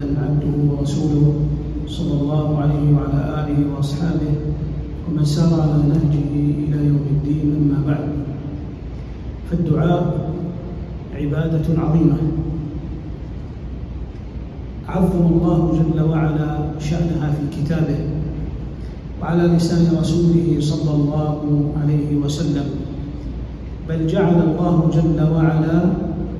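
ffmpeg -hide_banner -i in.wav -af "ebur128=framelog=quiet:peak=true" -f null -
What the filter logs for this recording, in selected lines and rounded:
Integrated loudness:
  I:         -18.7 LUFS
  Threshold: -29.3 LUFS
Loudness range:
  LRA:         4.1 LU
  Threshold: -39.5 LUFS
  LRA low:   -21.9 LUFS
  LRA high:  -17.8 LUFS
True peak:
  Peak:       -2.9 dBFS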